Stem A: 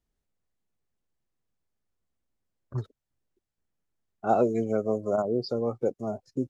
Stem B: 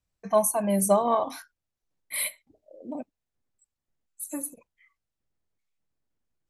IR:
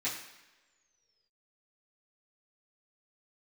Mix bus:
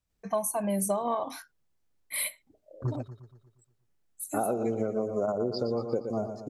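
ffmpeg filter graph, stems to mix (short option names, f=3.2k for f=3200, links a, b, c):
-filter_complex "[0:a]alimiter=limit=-16dB:level=0:latency=1:release=149,adelay=100,volume=2dB,asplit=2[a][b];[b]volume=-10dB[c];[1:a]volume=-1.5dB[d];[c]aecho=0:1:118|236|354|472|590|708|826|944:1|0.52|0.27|0.141|0.0731|0.038|0.0198|0.0103[e];[a][d][e]amix=inputs=3:normalize=0,acompressor=threshold=-25dB:ratio=6"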